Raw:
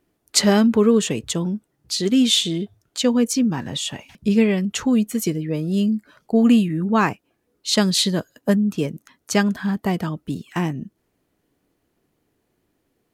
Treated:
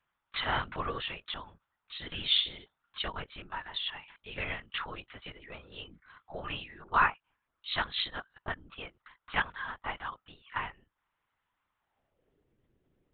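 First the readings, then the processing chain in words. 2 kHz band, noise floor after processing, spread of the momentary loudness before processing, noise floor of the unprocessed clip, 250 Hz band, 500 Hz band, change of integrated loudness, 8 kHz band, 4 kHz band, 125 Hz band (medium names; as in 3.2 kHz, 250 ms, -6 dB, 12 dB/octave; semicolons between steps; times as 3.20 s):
-4.5 dB, -85 dBFS, 12 LU, -71 dBFS, -32.5 dB, -22.0 dB, -14.0 dB, under -40 dB, -9.5 dB, -21.5 dB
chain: dynamic bell 970 Hz, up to -3 dB, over -32 dBFS, Q 1.1; high-pass sweep 1.1 kHz -> 220 Hz, 11.79–12.57 s; LPC vocoder at 8 kHz whisper; trim -7 dB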